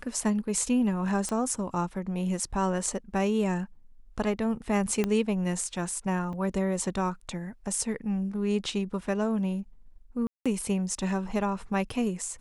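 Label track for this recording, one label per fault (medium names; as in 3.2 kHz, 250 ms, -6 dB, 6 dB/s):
1.290000	1.290000	pop -19 dBFS
5.040000	5.040000	pop -14 dBFS
6.330000	6.330000	dropout 4.2 ms
10.270000	10.460000	dropout 186 ms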